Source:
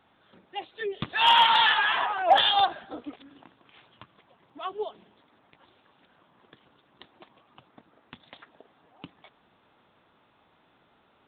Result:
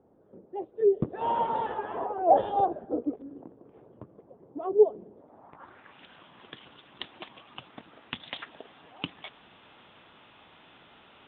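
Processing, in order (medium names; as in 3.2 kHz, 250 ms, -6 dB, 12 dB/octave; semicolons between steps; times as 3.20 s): dynamic bell 1.6 kHz, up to -4 dB, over -34 dBFS, Q 1.2; low-pass sweep 460 Hz -> 3.1 kHz, 5.14–6.04 s; in parallel at -1 dB: gain riding 2 s; on the sum: trim -1.5 dB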